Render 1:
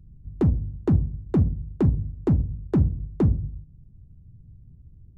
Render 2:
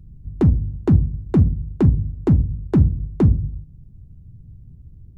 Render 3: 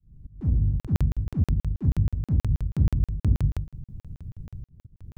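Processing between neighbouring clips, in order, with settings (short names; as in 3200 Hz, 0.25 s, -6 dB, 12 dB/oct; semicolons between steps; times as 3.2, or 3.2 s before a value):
dynamic EQ 670 Hz, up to -5 dB, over -40 dBFS, Q 0.79; gain +6 dB
opening faded in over 0.59 s; auto swell 0.319 s; crackling interface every 0.16 s, samples 2048, zero, from 0.8; gain +5 dB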